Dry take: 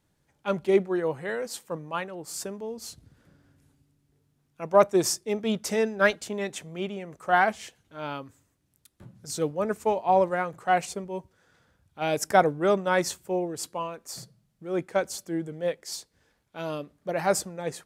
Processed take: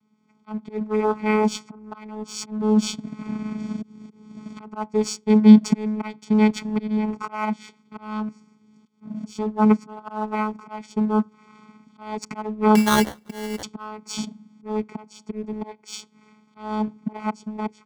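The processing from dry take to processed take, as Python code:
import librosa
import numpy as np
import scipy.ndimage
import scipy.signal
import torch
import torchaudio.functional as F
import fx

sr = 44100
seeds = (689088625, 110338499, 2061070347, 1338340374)

p1 = fx.recorder_agc(x, sr, target_db=-15.0, rise_db_per_s=15.0, max_gain_db=30)
p2 = fx.auto_swell(p1, sr, attack_ms=397.0)
p3 = fx.vocoder(p2, sr, bands=8, carrier='saw', carrier_hz=214.0)
p4 = p3 + 0.92 * np.pad(p3, (int(0.9 * sr / 1000.0), 0))[:len(p3)]
p5 = fx.sample_hold(p4, sr, seeds[0], rate_hz=2500.0, jitter_pct=0, at=(12.75, 13.63))
p6 = np.sign(p5) * np.maximum(np.abs(p5) - 10.0 ** (-41.0 / 20.0), 0.0)
p7 = p5 + F.gain(torch.from_numpy(p6), -4.5).numpy()
y = F.gain(torch.from_numpy(p7), 4.0).numpy()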